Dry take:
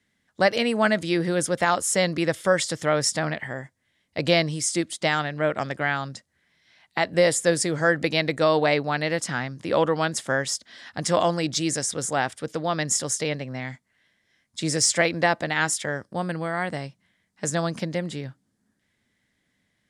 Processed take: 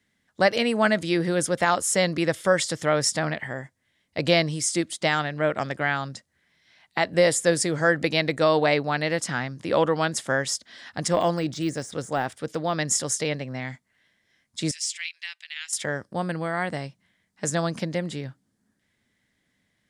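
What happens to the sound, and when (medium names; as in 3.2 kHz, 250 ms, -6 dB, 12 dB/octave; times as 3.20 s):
11.08–12.74 s: de-esser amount 95%
14.71–15.73 s: ladder high-pass 2.3 kHz, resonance 50%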